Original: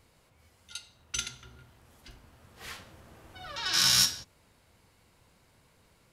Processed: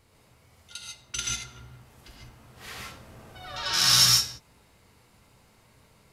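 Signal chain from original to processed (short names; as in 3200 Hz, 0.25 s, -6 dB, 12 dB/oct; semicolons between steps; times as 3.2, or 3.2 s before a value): non-linear reverb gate 0.17 s rising, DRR -2.5 dB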